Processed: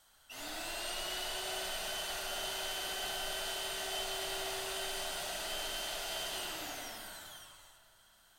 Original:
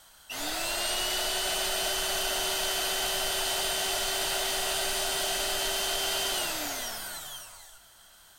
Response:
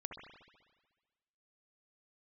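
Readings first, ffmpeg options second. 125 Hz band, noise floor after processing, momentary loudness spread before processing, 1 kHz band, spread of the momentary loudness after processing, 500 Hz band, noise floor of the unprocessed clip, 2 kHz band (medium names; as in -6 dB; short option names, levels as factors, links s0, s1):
-8.0 dB, -65 dBFS, 8 LU, -8.5 dB, 9 LU, -8.5 dB, -56 dBFS, -8.5 dB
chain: -filter_complex "[1:a]atrim=start_sample=2205,asetrate=48510,aresample=44100[s0];[0:a][s0]afir=irnorm=-1:irlink=0,volume=0.531"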